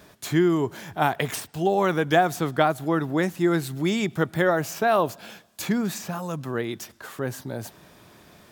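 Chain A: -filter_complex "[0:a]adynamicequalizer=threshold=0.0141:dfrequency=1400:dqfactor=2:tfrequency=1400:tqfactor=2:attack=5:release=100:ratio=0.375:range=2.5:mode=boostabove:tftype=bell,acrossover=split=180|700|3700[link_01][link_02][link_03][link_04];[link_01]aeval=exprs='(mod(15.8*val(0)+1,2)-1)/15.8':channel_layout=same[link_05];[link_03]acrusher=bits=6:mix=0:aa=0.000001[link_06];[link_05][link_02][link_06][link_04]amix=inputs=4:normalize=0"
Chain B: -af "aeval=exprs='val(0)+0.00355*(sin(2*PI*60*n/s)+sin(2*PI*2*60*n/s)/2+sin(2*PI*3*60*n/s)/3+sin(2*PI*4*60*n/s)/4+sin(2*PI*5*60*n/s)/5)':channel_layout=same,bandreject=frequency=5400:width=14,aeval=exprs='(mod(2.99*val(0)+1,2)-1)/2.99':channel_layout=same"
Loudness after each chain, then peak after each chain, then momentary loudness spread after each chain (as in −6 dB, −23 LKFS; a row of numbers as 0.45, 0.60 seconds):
−24.0, −24.5 LKFS; −5.5, −9.5 dBFS; 14, 13 LU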